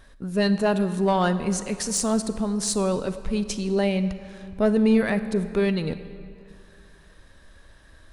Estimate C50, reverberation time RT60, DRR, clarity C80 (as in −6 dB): 12.0 dB, 2.5 s, 11.5 dB, 13.0 dB